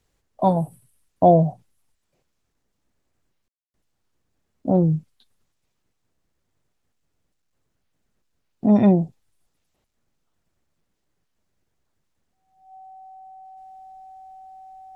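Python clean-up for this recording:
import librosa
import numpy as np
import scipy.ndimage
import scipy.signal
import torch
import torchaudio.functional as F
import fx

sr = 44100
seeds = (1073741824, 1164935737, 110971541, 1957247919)

y = fx.notch(x, sr, hz=760.0, q=30.0)
y = fx.fix_ambience(y, sr, seeds[0], print_start_s=2.33, print_end_s=2.83, start_s=3.48, end_s=3.74)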